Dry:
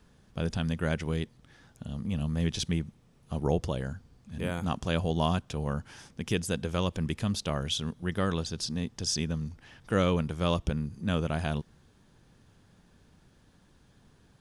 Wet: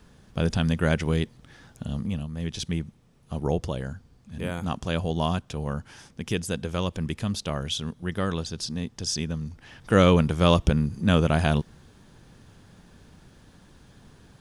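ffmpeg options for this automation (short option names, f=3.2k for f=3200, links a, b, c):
-af "volume=20dB,afade=t=out:st=1.95:d=0.33:silence=0.266073,afade=t=in:st=2.28:d=0.52:silence=0.473151,afade=t=in:st=9.44:d=0.64:silence=0.446684"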